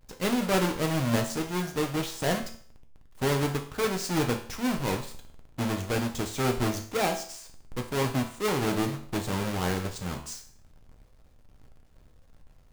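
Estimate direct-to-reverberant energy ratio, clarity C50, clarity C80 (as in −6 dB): 3.0 dB, 10.0 dB, 14.0 dB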